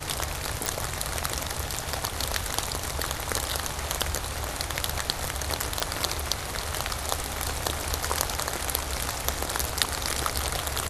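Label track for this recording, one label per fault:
0.660000	0.660000	pop
5.800000	5.800000	pop

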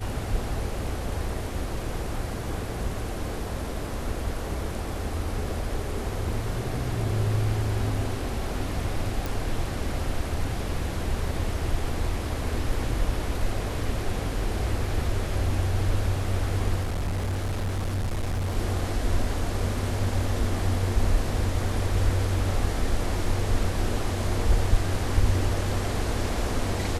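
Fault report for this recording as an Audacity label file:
9.260000	9.260000	pop
16.810000	18.560000	clipped -24 dBFS

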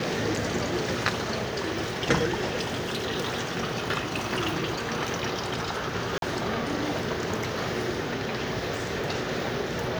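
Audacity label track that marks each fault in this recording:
2.600000	3.060000	clipped -26 dBFS
6.180000	6.220000	gap 42 ms

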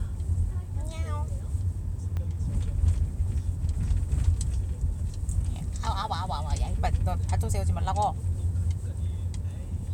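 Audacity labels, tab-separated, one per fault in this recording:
2.170000	2.170000	pop -23 dBFS

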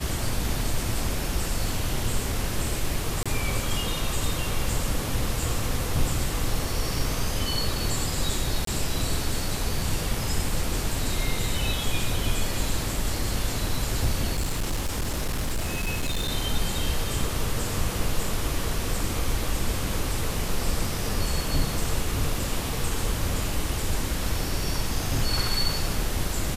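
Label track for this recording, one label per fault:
3.230000	3.260000	gap 26 ms
8.650000	8.670000	gap 23 ms
14.350000	16.310000	clipped -22.5 dBFS

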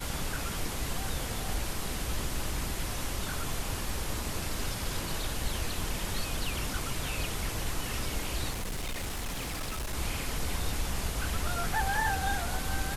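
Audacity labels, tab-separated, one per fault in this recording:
8.500000	9.940000	clipped -31 dBFS

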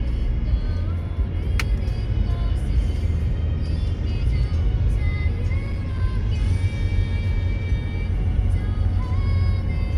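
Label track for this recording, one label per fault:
5.610000	6.020000	clipped -21 dBFS

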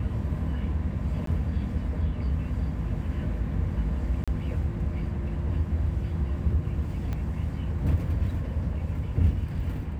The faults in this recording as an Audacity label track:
1.260000	1.270000	gap
4.240000	4.280000	gap 36 ms
7.130000	7.130000	pop -21 dBFS

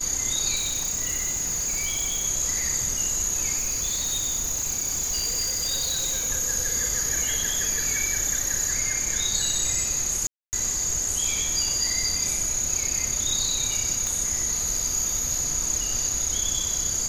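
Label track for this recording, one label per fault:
0.550000	2.250000	clipped -23 dBFS
3.570000	6.300000	clipped -22.5 dBFS
10.270000	10.530000	gap 0.259 s
14.070000	14.070000	pop

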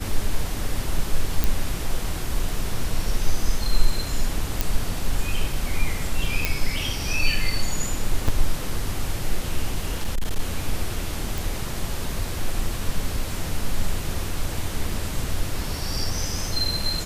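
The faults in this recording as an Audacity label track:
1.440000	1.440000	pop
4.610000	4.610000	pop
6.450000	6.450000	pop
8.280000	8.290000	gap 5.4 ms
9.890000	10.400000	clipped -18.5 dBFS
11.380000	11.380000	pop

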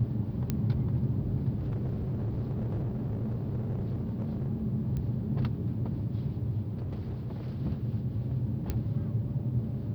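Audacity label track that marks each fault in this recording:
0.500000	0.500000	pop -16 dBFS
1.550000	4.490000	clipped -28.5 dBFS
4.970000	4.970000	pop -25 dBFS
6.770000	7.590000	clipped -31.5 dBFS
8.700000	8.700000	pop -18 dBFS

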